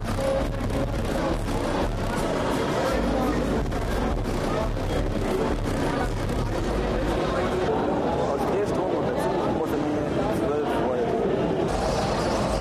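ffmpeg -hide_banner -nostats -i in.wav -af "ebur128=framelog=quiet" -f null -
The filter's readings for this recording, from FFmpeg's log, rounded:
Integrated loudness:
  I:         -25.5 LUFS
  Threshold: -35.5 LUFS
Loudness range:
  LRA:         1.6 LU
  Threshold: -45.5 LUFS
  LRA low:   -26.4 LUFS
  LRA high:  -24.8 LUFS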